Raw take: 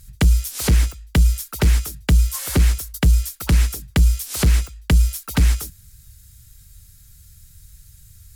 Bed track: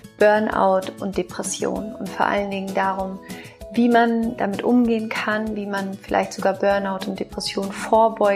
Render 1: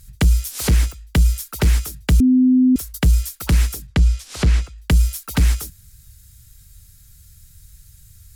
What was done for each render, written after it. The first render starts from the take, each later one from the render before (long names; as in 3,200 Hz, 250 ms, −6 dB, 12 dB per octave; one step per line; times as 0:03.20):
0:02.20–0:02.76: beep over 255 Hz −10 dBFS
0:03.87–0:04.78: high-frequency loss of the air 76 metres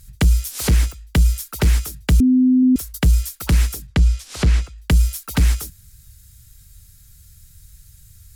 0:02.23–0:02.63: high-frequency loss of the air 390 metres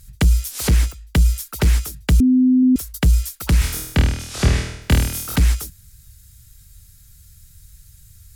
0:03.59–0:05.36: flutter between parallel walls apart 4.3 metres, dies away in 0.75 s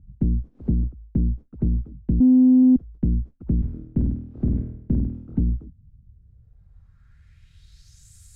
tube saturation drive 19 dB, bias 0.7
low-pass filter sweep 250 Hz → 8,100 Hz, 0:05.98–0:08.14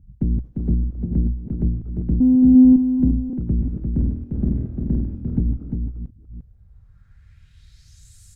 delay that plays each chunk backwards 303 ms, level −8 dB
on a send: single-tap delay 349 ms −5 dB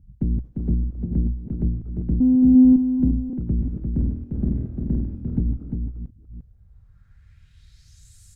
level −2 dB